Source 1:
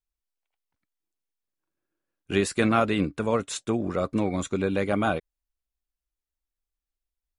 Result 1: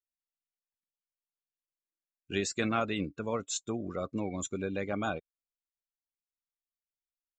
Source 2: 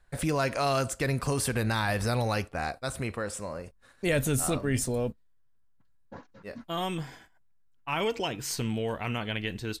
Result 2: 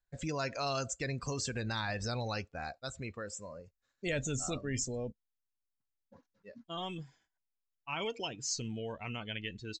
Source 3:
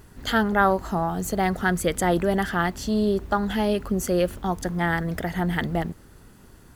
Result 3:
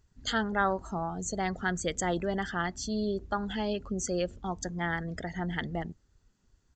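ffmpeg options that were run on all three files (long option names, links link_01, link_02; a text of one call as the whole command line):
ffmpeg -i in.wav -af "aemphasis=mode=production:type=75fm,afftdn=noise_reduction=16:noise_floor=-34,aresample=16000,aresample=44100,volume=-8dB" out.wav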